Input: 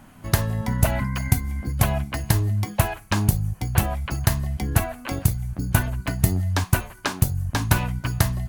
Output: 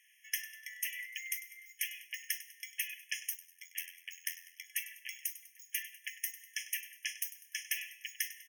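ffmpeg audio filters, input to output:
ffmpeg -i in.wav -filter_complex "[0:a]asplit=2[link_01][link_02];[link_02]aecho=0:1:99|198|297|396:0.178|0.0836|0.0393|0.0185[link_03];[link_01][link_03]amix=inputs=2:normalize=0,asettb=1/sr,asplit=3[link_04][link_05][link_06];[link_04]atrim=end=3.354[link_07];[link_05]atrim=start=3.35:end=4.65,asetpts=PTS-STARTPTS,afade=type=in:duration=0.004:curve=qsin,afade=type=out:start_time=1.296:duration=0.004:curve=qsin,aeval=exprs='val(0)*sin(2*PI*43*n/s)':channel_layout=same[link_08];[link_06]atrim=start=4.646[link_09];[link_07][link_08]acrossfade=duration=0.004:curve1=hsin:curve2=qsin[link_10];[link_10][link_09]acrossfade=duration=0.004:curve1=qsin:curve2=hsin,bandreject=frequency=152.2:width_type=h:width=4,bandreject=frequency=304.4:width_type=h:width=4,bandreject=frequency=456.6:width_type=h:width=4,bandreject=frequency=608.8:width_type=h:width=4,bandreject=frequency=761:width_type=h:width=4,bandreject=frequency=913.2:width_type=h:width=4,bandreject=frequency=1065.4:width_type=h:width=4,bandreject=frequency=1217.6:width_type=h:width=4,bandreject=frequency=1369.8:width_type=h:width=4,bandreject=frequency=1522:width_type=h:width=4,bandreject=frequency=1674.2:width_type=h:width=4,bandreject=frequency=1826.4:width_type=h:width=4,bandreject=frequency=1978.6:width_type=h:width=4,bandreject=frequency=2130.8:width_type=h:width=4,bandreject=frequency=2283:width_type=h:width=4,bandreject=frequency=2435.2:width_type=h:width=4,bandreject=frequency=2587.4:width_type=h:width=4,bandreject=frequency=2739.6:width_type=h:width=4,bandreject=frequency=2891.8:width_type=h:width=4,bandreject=frequency=3044:width_type=h:width=4,bandreject=frequency=3196.2:width_type=h:width=4,bandreject=frequency=3348.4:width_type=h:width=4,bandreject=frequency=3500.6:width_type=h:width=4,bandreject=frequency=3652.8:width_type=h:width=4,bandreject=frequency=3805:width_type=h:width=4,bandreject=frequency=3957.2:width_type=h:width=4,bandreject=frequency=4109.4:width_type=h:width=4,bandreject=frequency=4261.6:width_type=h:width=4,bandreject=frequency=4413.8:width_type=h:width=4,bandreject=frequency=4566:width_type=h:width=4,bandreject=frequency=4718.2:width_type=h:width=4,bandreject=frequency=4870.4:width_type=h:width=4,bandreject=frequency=5022.6:width_type=h:width=4,bandreject=frequency=5174.8:width_type=h:width=4,bandreject=frequency=5327:width_type=h:width=4,bandreject=frequency=5479.2:width_type=h:width=4,bandreject=frequency=5631.4:width_type=h:width=4,bandreject=frequency=5783.6:width_type=h:width=4,bandreject=frequency=5935.8:width_type=h:width=4,afftfilt=real='re*eq(mod(floor(b*sr/1024/1700),2),1)':imag='im*eq(mod(floor(b*sr/1024/1700),2),1)':win_size=1024:overlap=0.75,volume=-5.5dB" out.wav

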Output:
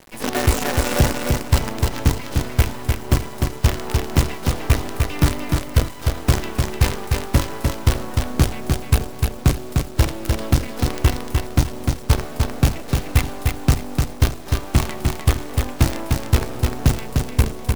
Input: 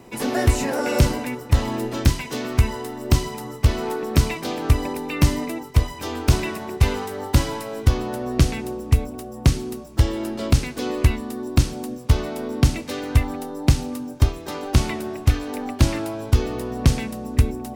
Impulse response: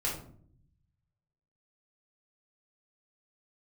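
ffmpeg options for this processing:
-filter_complex "[0:a]acrossover=split=2200[link_01][link_02];[link_02]alimiter=limit=-20dB:level=0:latency=1:release=351[link_03];[link_01][link_03]amix=inputs=2:normalize=0,acrusher=bits=4:dc=4:mix=0:aa=0.000001,aecho=1:1:301|602|903|1204:0.631|0.177|0.0495|0.0139"

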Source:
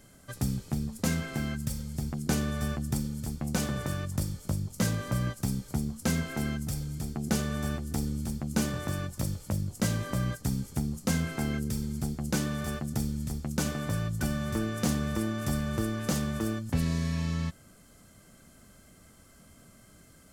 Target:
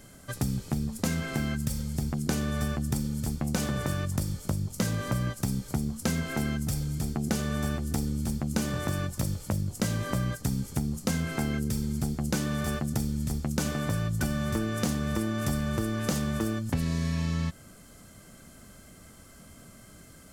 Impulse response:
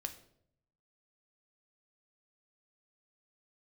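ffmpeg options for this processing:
-af "acompressor=threshold=-30dB:ratio=4,volume=5dB"

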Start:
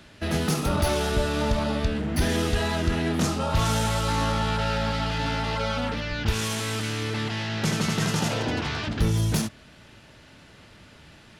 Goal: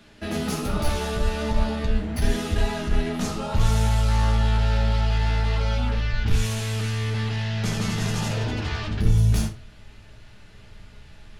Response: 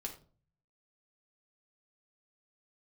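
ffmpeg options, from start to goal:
-filter_complex "[0:a]asubboost=boost=6:cutoff=91,asoftclip=type=tanh:threshold=-11dB[link_01];[1:a]atrim=start_sample=2205,afade=type=out:start_time=0.18:duration=0.01,atrim=end_sample=8379[link_02];[link_01][link_02]afir=irnorm=-1:irlink=0"

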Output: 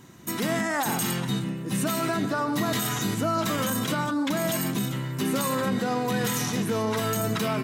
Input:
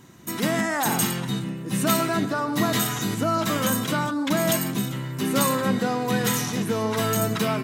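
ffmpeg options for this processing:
ffmpeg -i in.wav -af "alimiter=limit=-17.5dB:level=0:latency=1:release=30" out.wav

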